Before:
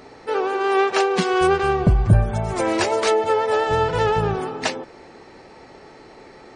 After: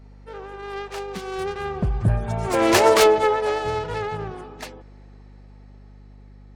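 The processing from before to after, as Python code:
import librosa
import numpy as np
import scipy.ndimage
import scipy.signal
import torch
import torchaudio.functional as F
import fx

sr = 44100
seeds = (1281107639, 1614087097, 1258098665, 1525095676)

y = fx.self_delay(x, sr, depth_ms=0.18)
y = fx.doppler_pass(y, sr, speed_mps=8, closest_m=1.7, pass_at_s=2.88)
y = fx.add_hum(y, sr, base_hz=50, snr_db=22)
y = y * 10.0 ** (6.5 / 20.0)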